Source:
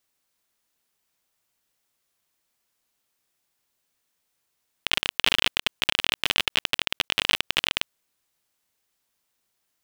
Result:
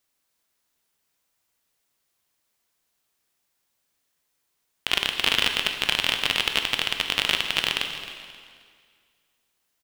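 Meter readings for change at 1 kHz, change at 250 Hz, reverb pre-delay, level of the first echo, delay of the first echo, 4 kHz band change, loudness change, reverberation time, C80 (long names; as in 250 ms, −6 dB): +1.5 dB, +1.5 dB, 6 ms, −14.5 dB, 266 ms, +1.0 dB, +1.0 dB, 2.0 s, 7.5 dB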